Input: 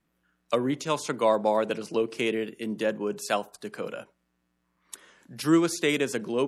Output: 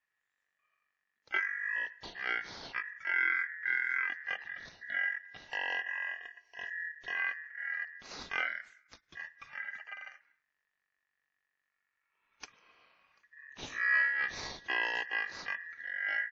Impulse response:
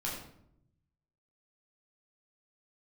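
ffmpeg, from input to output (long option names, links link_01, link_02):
-af "asetrate=17508,aresample=44100,aeval=exprs='val(0)*sin(2*PI*1800*n/s)':channel_layout=same,volume=-6.5dB"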